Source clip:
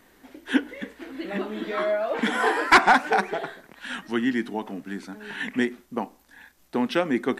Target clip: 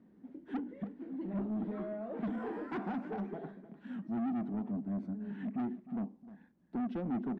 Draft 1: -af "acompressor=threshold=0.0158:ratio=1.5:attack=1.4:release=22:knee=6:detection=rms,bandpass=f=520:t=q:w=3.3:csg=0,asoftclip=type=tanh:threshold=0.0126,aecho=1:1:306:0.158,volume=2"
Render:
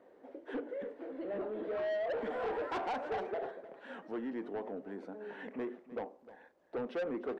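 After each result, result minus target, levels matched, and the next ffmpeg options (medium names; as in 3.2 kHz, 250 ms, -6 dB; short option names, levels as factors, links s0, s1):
500 Hz band +8.5 dB; compression: peak gain reduction +3 dB
-af "acompressor=threshold=0.0158:ratio=1.5:attack=1.4:release=22:knee=6:detection=rms,bandpass=f=200:t=q:w=3.3:csg=0,asoftclip=type=tanh:threshold=0.0126,aecho=1:1:306:0.158,volume=2"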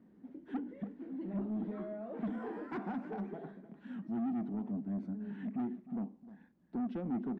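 compression: peak gain reduction +3 dB
-af "acompressor=threshold=0.0447:ratio=1.5:attack=1.4:release=22:knee=6:detection=rms,bandpass=f=200:t=q:w=3.3:csg=0,asoftclip=type=tanh:threshold=0.0126,aecho=1:1:306:0.158,volume=2"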